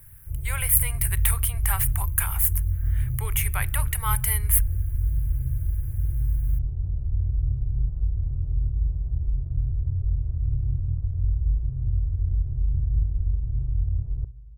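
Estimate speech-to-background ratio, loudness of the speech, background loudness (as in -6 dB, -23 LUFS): 3.0 dB, -25.0 LUFS, -28.0 LUFS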